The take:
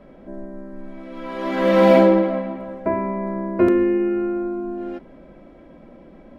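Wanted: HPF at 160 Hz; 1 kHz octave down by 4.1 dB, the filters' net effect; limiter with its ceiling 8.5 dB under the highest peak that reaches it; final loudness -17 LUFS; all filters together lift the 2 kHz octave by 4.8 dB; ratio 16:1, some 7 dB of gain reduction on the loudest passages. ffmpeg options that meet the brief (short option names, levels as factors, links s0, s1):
-af "highpass=160,equalizer=f=1000:t=o:g=-7,equalizer=f=2000:t=o:g=7.5,acompressor=threshold=0.158:ratio=16,volume=3.55,alimiter=limit=0.422:level=0:latency=1"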